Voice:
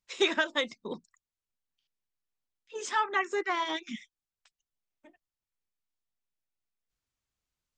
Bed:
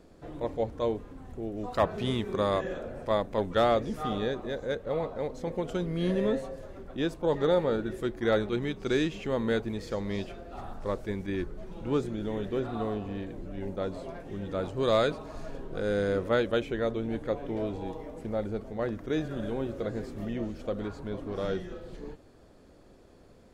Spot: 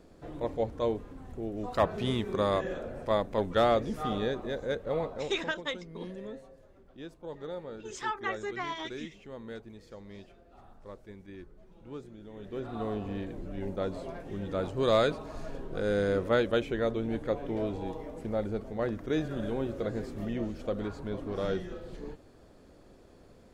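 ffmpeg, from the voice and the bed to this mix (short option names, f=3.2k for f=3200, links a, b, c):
-filter_complex "[0:a]adelay=5100,volume=-5.5dB[a];[1:a]volume=14dB,afade=t=out:st=4.99:d=0.65:silence=0.199526,afade=t=in:st=12.33:d=0.73:silence=0.188365[b];[a][b]amix=inputs=2:normalize=0"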